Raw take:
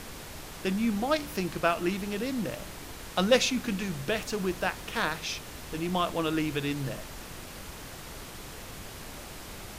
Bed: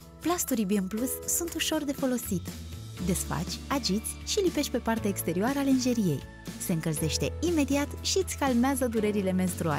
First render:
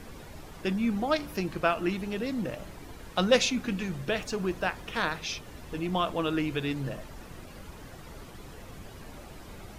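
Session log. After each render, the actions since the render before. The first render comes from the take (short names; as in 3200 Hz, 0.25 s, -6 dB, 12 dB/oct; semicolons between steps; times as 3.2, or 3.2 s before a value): denoiser 10 dB, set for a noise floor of -44 dBFS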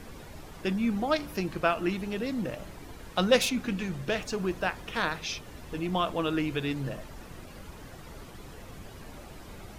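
3.4–4.28 self-modulated delay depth 0.053 ms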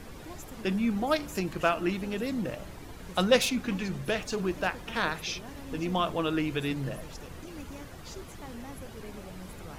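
add bed -19 dB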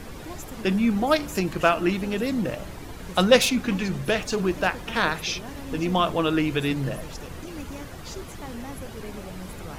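gain +6 dB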